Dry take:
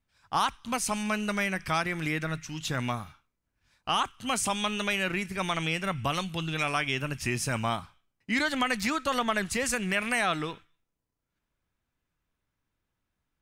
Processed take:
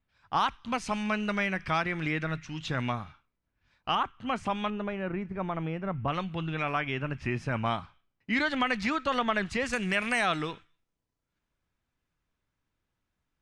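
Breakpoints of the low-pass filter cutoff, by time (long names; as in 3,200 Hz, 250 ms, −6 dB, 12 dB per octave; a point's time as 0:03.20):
3,700 Hz
from 0:03.95 2,000 Hz
from 0:04.70 1,000 Hz
from 0:06.08 2,100 Hz
from 0:07.66 3,700 Hz
from 0:09.73 7,400 Hz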